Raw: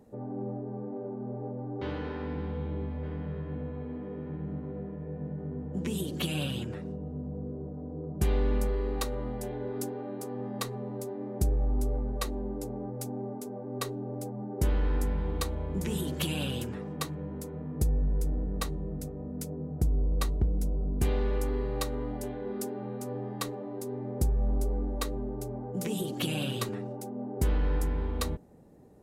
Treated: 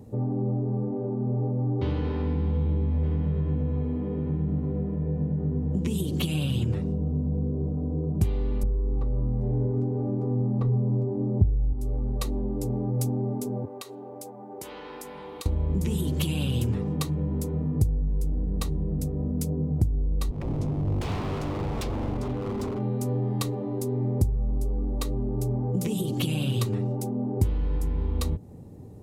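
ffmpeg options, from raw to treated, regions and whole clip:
ffmpeg -i in.wav -filter_complex "[0:a]asettb=1/sr,asplit=3[link_01][link_02][link_03];[link_01]atrim=end=8.634[link_04];[link_02]atrim=start=8.63:end=11.73,asetpts=PTS-STARTPTS,afade=type=in:duration=0.004:curve=qsin,afade=type=out:start_time=3.096:duration=0.004:curve=qsin,lowpass=1000,lowshelf=frequency=200:gain=10[link_05];[link_03]atrim=start=11.726[link_06];[link_04][link_05]acrossfade=duration=0.004:curve1=hsin:curve2=qsin[link_07];[link_07][link_06]acrossfade=duration=0.004:curve1=qsin:curve2=hsin,asettb=1/sr,asplit=3[link_08][link_09][link_10];[link_08]atrim=end=13.654[link_11];[link_09]atrim=start=13.65:end=15.46,asetpts=PTS-STARTPTS,afade=type=in:duration=0.004:curve=qsin,afade=type=out:start_time=1.806:duration=0.004:curve=qsin,highpass=640,acompressor=threshold=-42dB:ratio=5:attack=3.2:release=140:knee=1:detection=peak[link_12];[link_10]atrim=start=15.456[link_13];[link_11][link_12]acrossfade=duration=0.004:curve1=hsin:curve2=qsin[link_14];[link_14][link_13]acrossfade=duration=0.004:curve1=qsin:curve2=hsin,asettb=1/sr,asplit=3[link_15][link_16][link_17];[link_15]atrim=end=20.314[link_18];[link_16]atrim=start=20.31:end=22.81,asetpts=PTS-STARTPTS,afade=type=in:duration=0.004:curve=qsin,afade=type=out:start_time=2.496:duration=0.004:curve=qsin,lowpass=4000,aeval=exprs='0.0211*(abs(mod(val(0)/0.0211+3,4)-2)-1)':channel_layout=same[link_19];[link_17]atrim=start=22.806[link_20];[link_18][link_19]acrossfade=duration=0.004:curve1=hsin:curve2=qsin[link_21];[link_21][link_20]acrossfade=duration=0.004:curve1=qsin:curve2=hsin,lowshelf=frequency=320:gain=3.5,acompressor=threshold=-32dB:ratio=6,equalizer=frequency=100:width_type=o:width=0.67:gain=11,equalizer=frequency=630:width_type=o:width=0.67:gain=-4,equalizer=frequency=1600:width_type=o:width=0.67:gain=-8,volume=7dB" out.wav

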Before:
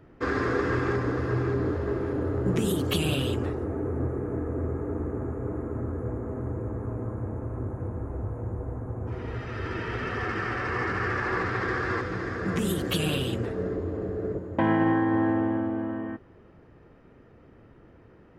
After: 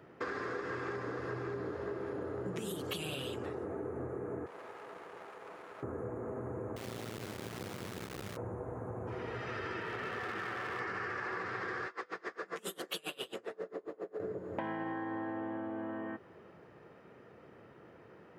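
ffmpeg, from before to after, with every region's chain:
ffmpeg -i in.wav -filter_complex "[0:a]asettb=1/sr,asplit=3[link_01][link_02][link_03];[link_01]atrim=end=4.464[link_04];[link_02]atrim=start=4.46:end=5.83,asetpts=PTS-STARTPTS,afade=type=in:duration=0.004:curve=qsin,afade=type=out:start_time=1.366:duration=0.004:curve=qsin,highpass=800,aeval=exprs='max(val(0),0)':channel_layout=same[link_05];[link_03]atrim=start=5.826[link_06];[link_04][link_05]acrossfade=duration=0.004:curve1=hsin:curve2=qsin[link_07];[link_07][link_06]acrossfade=duration=0.004:curve1=qsin:curve2=hsin,asettb=1/sr,asplit=3[link_08][link_09][link_10];[link_08]atrim=end=6.764[link_11];[link_09]atrim=start=6.76:end=8.37,asetpts=PTS-STARTPTS,afade=type=in:duration=0.004:curve=qsin,afade=type=out:start_time=1.606:duration=0.004:curve=qsin,asuperstop=centerf=760:order=4:qfactor=1,acrusher=bits=4:dc=4:mix=0:aa=0.000001[link_12];[link_10]atrim=start=8.366[link_13];[link_11][link_12]acrossfade=duration=0.004:curve1=hsin:curve2=qsin[link_14];[link_14][link_13]acrossfade=duration=0.004:curve1=qsin:curve2=hsin,asettb=1/sr,asplit=3[link_15][link_16][link_17];[link_15]atrim=end=9.804[link_18];[link_16]atrim=start=9.8:end=10.8,asetpts=PTS-STARTPTS,afade=type=in:duration=0.004:curve=qsin,afade=type=out:start_time=0.996:duration=0.004:curve=qsin,highshelf=frequency=5600:gain=-11,aeval=exprs='clip(val(0),-1,0.0299)':channel_layout=same[link_19];[link_17]atrim=start=10.796[link_20];[link_18][link_19]acrossfade=duration=0.004:curve1=hsin:curve2=qsin[link_21];[link_21][link_20]acrossfade=duration=0.004:curve1=qsin:curve2=hsin,asettb=1/sr,asplit=3[link_22][link_23][link_24];[link_22]atrim=end=11.874[link_25];[link_23]atrim=start=11.87:end=14.2,asetpts=PTS-STARTPTS,afade=type=in:duration=0.004:curve=qsin,afade=type=out:start_time=2.326:duration=0.004:curve=qsin,highpass=360,bandreject=frequency=1600:width=24,aeval=exprs='val(0)*pow(10,-29*(0.5-0.5*cos(2*PI*7.4*n/s))/20)':channel_layout=same[link_26];[link_24]atrim=start=14.196[link_27];[link_25][link_26]acrossfade=duration=0.004:curve1=hsin:curve2=qsin[link_28];[link_28][link_27]acrossfade=duration=0.004:curve1=qsin:curve2=hsin,highpass=190,equalizer=frequency=270:width_type=o:width=0.63:gain=-7.5,acompressor=threshold=-38dB:ratio=6,volume=1.5dB" out.wav

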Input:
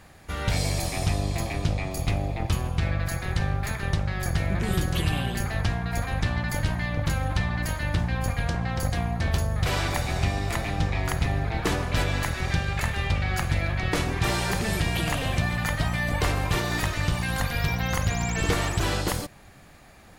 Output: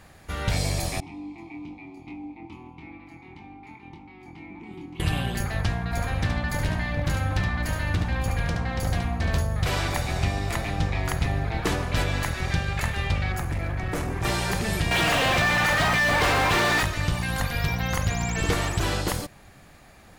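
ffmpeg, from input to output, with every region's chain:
ffmpeg -i in.wav -filter_complex "[0:a]asettb=1/sr,asplit=3[link_01][link_02][link_03];[link_01]atrim=end=1.004[link_04];[link_02]atrim=start=1:end=5,asetpts=PTS-STARTPTS,afade=type=in:duration=0.004:curve=qsin,afade=type=out:start_time=3.996:duration=0.004:curve=qsin,asplit=3[link_05][link_06][link_07];[link_05]bandpass=frequency=300:width_type=q:width=8,volume=0dB[link_08];[link_06]bandpass=frequency=870:width_type=q:width=8,volume=-6dB[link_09];[link_07]bandpass=frequency=2240:width_type=q:width=8,volume=-9dB[link_10];[link_08][link_09][link_10]amix=inputs=3:normalize=0,asplit=2[link_11][link_12];[link_12]adelay=24,volume=-5dB[link_13];[link_11][link_13]amix=inputs=2:normalize=0,atrim=end_sample=176400[link_14];[link_03]atrim=start=4.996[link_15];[link_04][link_14]acrossfade=duration=0.004:curve1=hsin:curve2=qsin[link_16];[link_16][link_15]acrossfade=duration=0.004:curve1=qsin:curve2=hsin,asettb=1/sr,asplit=3[link_17][link_18][link_19];[link_17]atrim=end=5.844[link_20];[link_18]atrim=start=5.84:end=9.41,asetpts=PTS-STARTPTS,afade=type=in:duration=0.004:curve=qsin,afade=type=out:start_time=3.566:duration=0.004:curve=qsin,highshelf=frequency=6400:gain=-3.5,aeval=exprs='0.133*(abs(mod(val(0)/0.133+3,4)-2)-1)':channel_layout=same,aecho=1:1:72:0.562,atrim=end_sample=157437[link_21];[link_19]atrim=start=9.406[link_22];[link_20][link_21]acrossfade=duration=0.004:curve1=hsin:curve2=qsin[link_23];[link_23][link_22]acrossfade=duration=0.004:curve1=qsin:curve2=hsin,asettb=1/sr,asplit=3[link_24][link_25][link_26];[link_24]atrim=end=13.324[link_27];[link_25]atrim=start=13.32:end=14.25,asetpts=PTS-STARTPTS,afade=type=in:duration=0.004:curve=qsin,afade=type=out:start_time=0.926:duration=0.004:curve=qsin,equalizer=frequency=3700:width=1:gain=-11.5,volume=23.5dB,asoftclip=hard,volume=-23.5dB[link_28];[link_26]atrim=start=14.246[link_29];[link_27][link_28]acrossfade=duration=0.004:curve1=hsin:curve2=qsin[link_30];[link_30][link_29]acrossfade=duration=0.004:curve1=qsin:curve2=hsin,asettb=1/sr,asplit=3[link_31][link_32][link_33];[link_31]atrim=end=14.914[link_34];[link_32]atrim=start=14.91:end=16.83,asetpts=PTS-STARTPTS,afade=type=in:duration=0.004:curve=qsin,afade=type=out:start_time=1.916:duration=0.004:curve=qsin,asplit=2[link_35][link_36];[link_36]highpass=frequency=720:poles=1,volume=29dB,asoftclip=type=tanh:threshold=-14dB[link_37];[link_35][link_37]amix=inputs=2:normalize=0,lowpass=frequency=2700:poles=1,volume=-6dB,acrusher=bits=8:dc=4:mix=0:aa=0.000001[link_38];[link_33]atrim=start=16.826[link_39];[link_34][link_38]acrossfade=duration=0.004:curve1=hsin:curve2=qsin[link_40];[link_40][link_39]acrossfade=duration=0.004:curve1=qsin:curve2=hsin" out.wav

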